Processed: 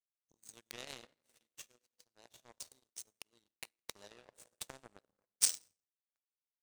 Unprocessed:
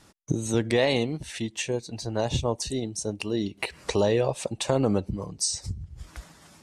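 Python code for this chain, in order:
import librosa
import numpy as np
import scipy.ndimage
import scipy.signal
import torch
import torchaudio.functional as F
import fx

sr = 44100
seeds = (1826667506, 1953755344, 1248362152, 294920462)

y = fx.riaa(x, sr, side='recording')
y = fx.rev_plate(y, sr, seeds[0], rt60_s=2.6, hf_ratio=0.45, predelay_ms=0, drr_db=4.0)
y = fx.power_curve(y, sr, exponent=3.0)
y = y * 10.0 ** (-2.5 / 20.0)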